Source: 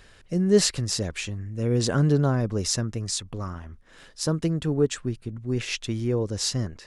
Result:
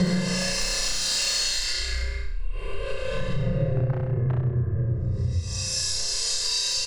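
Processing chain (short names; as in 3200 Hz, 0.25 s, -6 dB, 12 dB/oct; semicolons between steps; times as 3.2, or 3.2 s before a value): Paulstretch 19×, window 0.05 s, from 0.6; comb 1.9 ms, depth 83%; shoebox room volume 160 m³, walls furnished, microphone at 0.82 m; in parallel at -7.5 dB: wrapped overs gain 11.5 dB; on the sum: LPF 1700 Hz 6 dB/oct; flutter echo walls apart 5.6 m, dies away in 0.83 s; compressor 6:1, threshold -27 dBFS, peak gain reduction 15 dB; three-band expander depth 70%; gain +5 dB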